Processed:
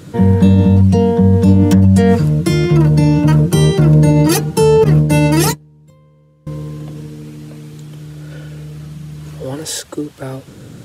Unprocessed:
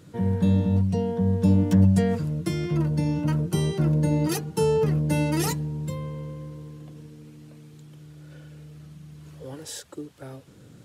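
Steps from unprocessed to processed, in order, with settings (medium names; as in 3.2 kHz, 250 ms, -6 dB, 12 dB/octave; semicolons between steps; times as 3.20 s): 4.84–6.47 s: gate -24 dBFS, range -29 dB; loudness maximiser +15.5 dB; trim -1 dB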